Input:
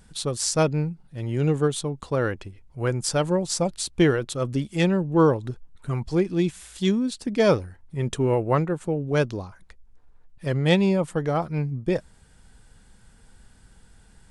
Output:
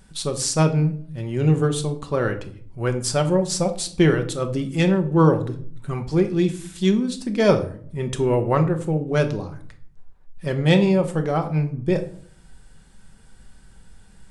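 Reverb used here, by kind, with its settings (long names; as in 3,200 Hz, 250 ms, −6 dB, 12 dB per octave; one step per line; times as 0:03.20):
rectangular room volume 620 cubic metres, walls furnished, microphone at 1.1 metres
level +1 dB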